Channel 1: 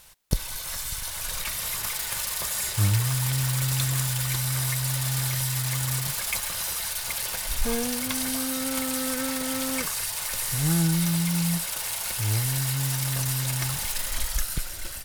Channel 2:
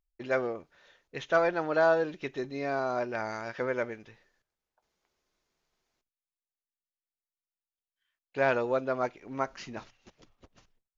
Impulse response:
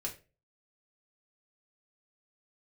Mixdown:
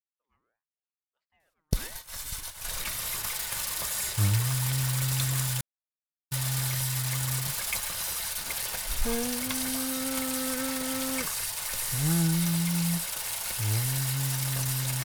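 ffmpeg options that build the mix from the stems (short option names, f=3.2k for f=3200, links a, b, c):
-filter_complex "[0:a]adelay=1400,volume=-2.5dB,asplit=3[a][b][c];[a]atrim=end=5.61,asetpts=PTS-STARTPTS,afade=t=out:st=5.606:d=0.004:c=hsin[d];[b]atrim=start=5.61:end=6.31,asetpts=PTS-STARTPTS,volume=0[e];[c]atrim=start=6.31,asetpts=PTS-STARTPTS,afade=t=in:d=0.004:c=hsin[f];[d][e][f]concat=n=3:v=0:a=1[g];[1:a]aeval=exprs='val(0)*sin(2*PI*1000*n/s+1000*0.4/1.5*sin(2*PI*1.5*n/s))':c=same,volume=-19.5dB[h];[g][h]amix=inputs=2:normalize=0,agate=range=-25dB:threshold=-34dB:ratio=16:detection=peak"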